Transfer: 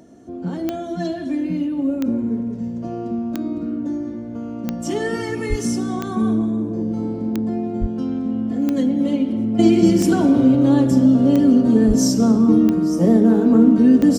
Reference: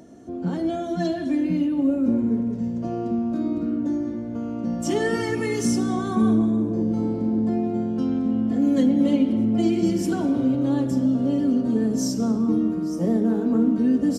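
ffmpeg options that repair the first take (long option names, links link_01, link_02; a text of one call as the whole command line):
ffmpeg -i in.wav -filter_complex "[0:a]adeclick=threshold=4,asplit=3[link_01][link_02][link_03];[link_01]afade=type=out:start_time=5.49:duration=0.02[link_04];[link_02]highpass=frequency=140:width=0.5412,highpass=frequency=140:width=1.3066,afade=type=in:start_time=5.49:duration=0.02,afade=type=out:start_time=5.61:duration=0.02[link_05];[link_03]afade=type=in:start_time=5.61:duration=0.02[link_06];[link_04][link_05][link_06]amix=inputs=3:normalize=0,asplit=3[link_07][link_08][link_09];[link_07]afade=type=out:start_time=7.8:duration=0.02[link_10];[link_08]highpass=frequency=140:width=0.5412,highpass=frequency=140:width=1.3066,afade=type=in:start_time=7.8:duration=0.02,afade=type=out:start_time=7.92:duration=0.02[link_11];[link_09]afade=type=in:start_time=7.92:duration=0.02[link_12];[link_10][link_11][link_12]amix=inputs=3:normalize=0,asplit=3[link_13][link_14][link_15];[link_13]afade=type=out:start_time=11.87:duration=0.02[link_16];[link_14]highpass=frequency=140:width=0.5412,highpass=frequency=140:width=1.3066,afade=type=in:start_time=11.87:duration=0.02,afade=type=out:start_time=11.99:duration=0.02[link_17];[link_15]afade=type=in:start_time=11.99:duration=0.02[link_18];[link_16][link_17][link_18]amix=inputs=3:normalize=0,asetnsamples=nb_out_samples=441:pad=0,asendcmd='9.59 volume volume -7.5dB',volume=0dB" out.wav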